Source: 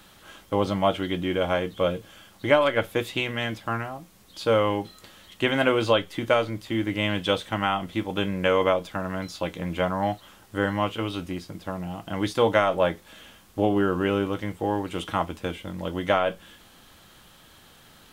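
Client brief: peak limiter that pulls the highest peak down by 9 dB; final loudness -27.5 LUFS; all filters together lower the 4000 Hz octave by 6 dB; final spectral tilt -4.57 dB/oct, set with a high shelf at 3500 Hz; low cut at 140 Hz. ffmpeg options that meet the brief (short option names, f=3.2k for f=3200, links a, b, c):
-af "highpass=140,highshelf=f=3.5k:g=-7,equalizer=f=4k:t=o:g=-4,volume=1dB,alimiter=limit=-13dB:level=0:latency=1"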